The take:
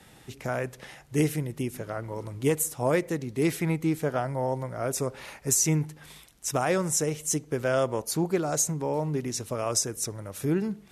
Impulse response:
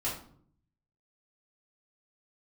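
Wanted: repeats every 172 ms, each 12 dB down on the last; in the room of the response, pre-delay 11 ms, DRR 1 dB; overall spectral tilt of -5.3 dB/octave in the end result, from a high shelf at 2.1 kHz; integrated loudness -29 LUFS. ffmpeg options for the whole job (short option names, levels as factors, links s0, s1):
-filter_complex "[0:a]highshelf=f=2100:g=-6.5,aecho=1:1:172|344|516:0.251|0.0628|0.0157,asplit=2[s0][s1];[1:a]atrim=start_sample=2205,adelay=11[s2];[s1][s2]afir=irnorm=-1:irlink=0,volume=0.473[s3];[s0][s3]amix=inputs=2:normalize=0,volume=0.75"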